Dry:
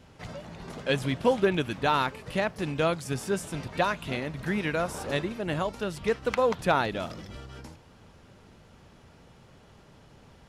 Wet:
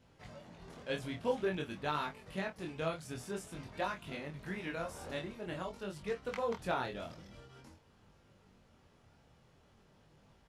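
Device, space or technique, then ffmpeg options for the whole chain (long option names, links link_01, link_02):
double-tracked vocal: -filter_complex "[0:a]asplit=2[link_01][link_02];[link_02]adelay=26,volume=-9dB[link_03];[link_01][link_03]amix=inputs=2:normalize=0,flanger=delay=20:depth=4.7:speed=0.49,volume=-8.5dB"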